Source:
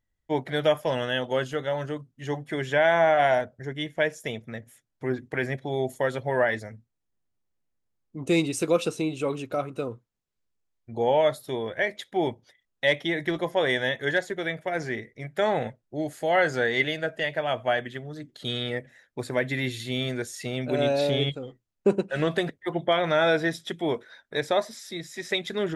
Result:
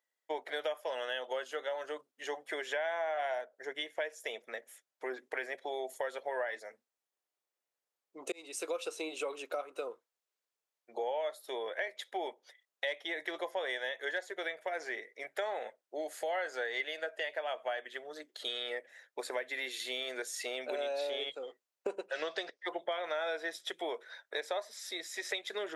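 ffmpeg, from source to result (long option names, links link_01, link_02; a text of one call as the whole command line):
ffmpeg -i in.wav -filter_complex "[0:a]asettb=1/sr,asplit=3[link_01][link_02][link_03];[link_01]atrim=end=22.124[link_04];[link_02]atrim=start=22.12:end=22.69,asetpts=PTS-STARTPTS,afade=type=in:duration=0.004:curve=qsin,afade=type=out:start_time=0.566:duration=0.004:curve=qsin,lowpass=frequency=5300:width_type=q:width=4.3[link_05];[link_03]atrim=start=22.686[link_06];[link_04][link_05]acrossfade=duration=0.004:curve1=hsin:curve2=qsin[link_07];[link_07][link_06]acrossfade=duration=0.004:curve1=qsin:curve2=hsin,asplit=2[link_08][link_09];[link_08]atrim=end=8.32,asetpts=PTS-STARTPTS,afade=type=out:start_time=8.316:duration=0.004:curve=hsin[link_10];[link_09]atrim=start=8.32,asetpts=PTS-STARTPTS,afade=type=in:duration=0.57[link_11];[link_10][link_11]concat=n=2:v=0:a=1,highpass=frequency=450:width=0.5412,highpass=frequency=450:width=1.3066,acompressor=threshold=-35dB:ratio=4" out.wav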